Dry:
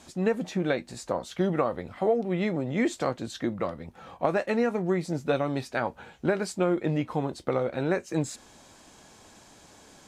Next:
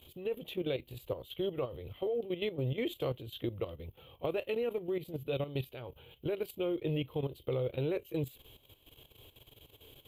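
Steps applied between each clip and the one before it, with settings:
drawn EQ curve 130 Hz 0 dB, 190 Hz −19 dB, 440 Hz −3 dB, 760 Hz −17 dB, 1,100 Hz −15 dB, 1,700 Hz −22 dB, 3,100 Hz +5 dB, 5,400 Hz −28 dB, 9,100 Hz −16 dB, 13,000 Hz +13 dB
output level in coarse steps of 12 dB
level +4 dB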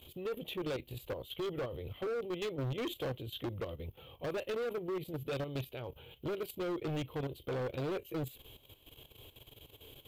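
hard clipping −35.5 dBFS, distortion −8 dB
level +2 dB

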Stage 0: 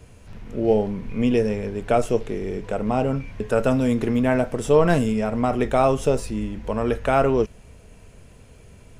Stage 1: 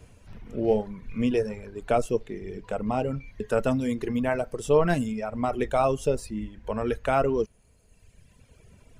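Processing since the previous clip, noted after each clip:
reverb reduction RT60 1.6 s
level −3.5 dB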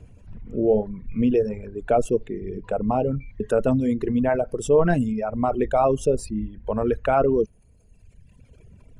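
spectral envelope exaggerated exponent 1.5
in parallel at −2 dB: brickwall limiter −17.5 dBFS, peak gain reduction 7.5 dB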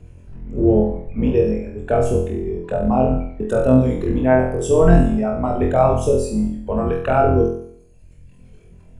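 sub-octave generator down 2 octaves, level 0 dB
flutter between parallel walls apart 4 metres, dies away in 0.62 s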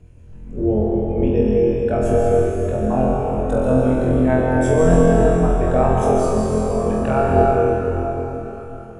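convolution reverb RT60 4.3 s, pre-delay 111 ms, DRR −3 dB
level −4 dB

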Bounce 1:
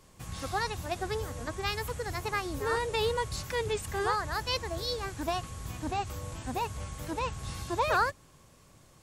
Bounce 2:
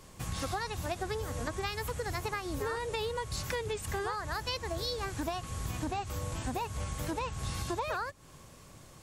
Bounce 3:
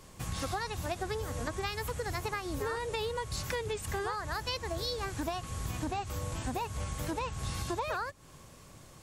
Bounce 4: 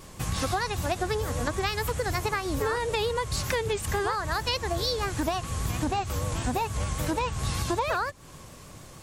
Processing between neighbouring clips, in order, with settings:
downward compressor 12 to 1, threshold −36 dBFS, peak gain reduction 15 dB; level +5 dB
no processing that can be heard
pitch vibrato 6.6 Hz 60 cents; level +7 dB

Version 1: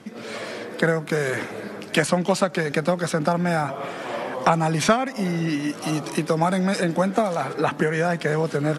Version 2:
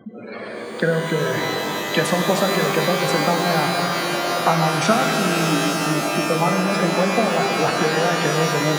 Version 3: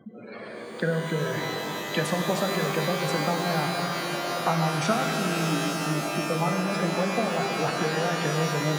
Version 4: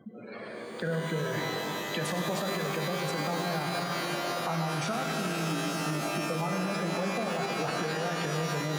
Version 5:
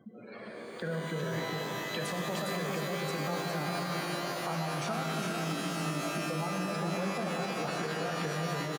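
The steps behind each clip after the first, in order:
gate on every frequency bin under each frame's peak −15 dB strong; reverb with rising layers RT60 4 s, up +12 semitones, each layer −2 dB, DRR 2 dB
parametric band 150 Hz +4.5 dB 0.38 octaves; level −7.5 dB
brickwall limiter −20 dBFS, peak gain reduction 8.5 dB; level −2 dB
single-tap delay 407 ms −5 dB; level −4 dB

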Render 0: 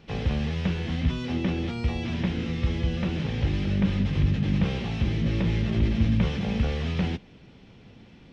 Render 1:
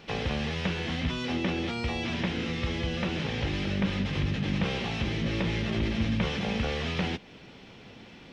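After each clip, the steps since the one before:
low-shelf EQ 260 Hz −12 dB
in parallel at −0.5 dB: downward compressor, threshold −41 dBFS, peak gain reduction 14.5 dB
on the sum: level +1.5 dB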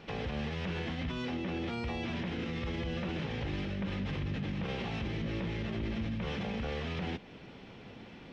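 high-shelf EQ 3,400 Hz −9.5 dB
brickwall limiter −28 dBFS, peak gain reduction 11.5 dB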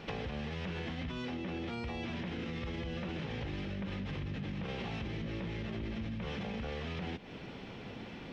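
downward compressor, threshold −40 dBFS, peak gain reduction 8.5 dB
level +4 dB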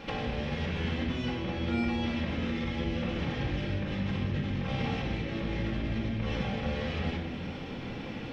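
rectangular room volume 1,200 cubic metres, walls mixed, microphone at 2.2 metres
level +2 dB

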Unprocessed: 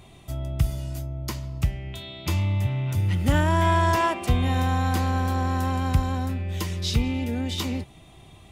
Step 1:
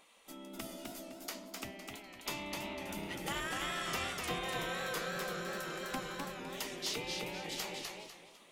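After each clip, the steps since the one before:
gate on every frequency bin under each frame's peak −15 dB weak
feedback echo with a swinging delay time 252 ms, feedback 32%, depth 144 cents, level −3.5 dB
level −6 dB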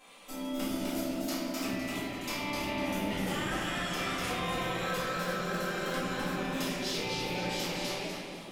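downward compressor, threshold −42 dBFS, peak gain reduction 9.5 dB
convolution reverb RT60 1.6 s, pre-delay 4 ms, DRR −11 dB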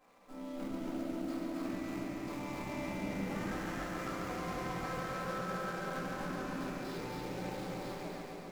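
running median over 15 samples
on a send: echo machine with several playback heads 139 ms, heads first and second, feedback 61%, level −7.5 dB
on the sum: level −6 dB

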